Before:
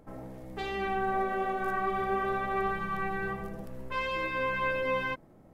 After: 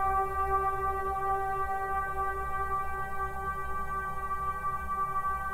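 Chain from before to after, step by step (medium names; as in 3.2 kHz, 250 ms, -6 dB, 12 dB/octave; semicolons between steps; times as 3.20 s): FFT filter 110 Hz 0 dB, 220 Hz -23 dB, 390 Hz -10 dB, 1 kHz 0 dB, 3.3 kHz -17 dB, 8 kHz +4 dB; Paulstretch 19×, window 0.25 s, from 2.62 s; trim +4 dB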